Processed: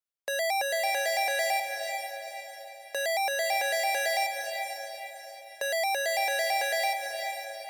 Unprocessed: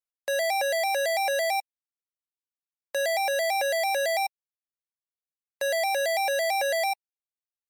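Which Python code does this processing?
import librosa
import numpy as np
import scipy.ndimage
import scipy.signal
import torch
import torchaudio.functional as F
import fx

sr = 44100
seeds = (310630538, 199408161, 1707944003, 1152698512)

y = fx.echo_diffused(x, sr, ms=477, feedback_pct=45, wet_db=-6.0)
y = fx.dynamic_eq(y, sr, hz=550.0, q=5.0, threshold_db=-39.0, ratio=4.0, max_db=-5)
y = y * 10.0 ** (-1.5 / 20.0)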